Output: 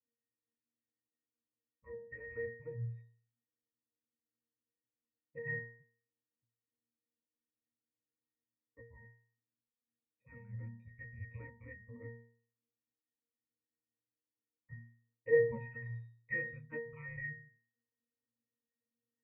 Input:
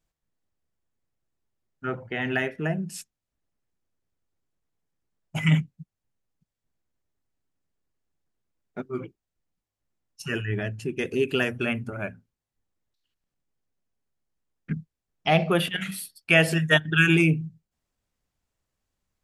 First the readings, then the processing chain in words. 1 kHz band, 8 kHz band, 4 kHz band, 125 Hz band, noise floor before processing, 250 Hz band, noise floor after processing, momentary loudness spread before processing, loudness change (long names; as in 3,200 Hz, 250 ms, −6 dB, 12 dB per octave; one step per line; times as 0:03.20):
−28.5 dB, below −35 dB, below −40 dB, −18.5 dB, below −85 dBFS, −27.5 dB, below −85 dBFS, 17 LU, −15.0 dB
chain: frequency shifter −310 Hz
formant resonators in series e
resonances in every octave A#, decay 0.51 s
level +16.5 dB